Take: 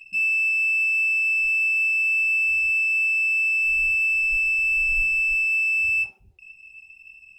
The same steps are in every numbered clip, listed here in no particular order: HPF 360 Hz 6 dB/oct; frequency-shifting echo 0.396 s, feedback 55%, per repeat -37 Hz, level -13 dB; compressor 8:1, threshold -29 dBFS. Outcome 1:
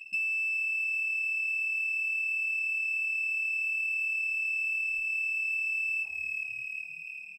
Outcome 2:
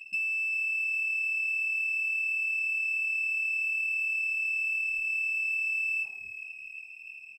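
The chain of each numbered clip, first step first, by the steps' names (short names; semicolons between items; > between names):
frequency-shifting echo > compressor > HPF; compressor > HPF > frequency-shifting echo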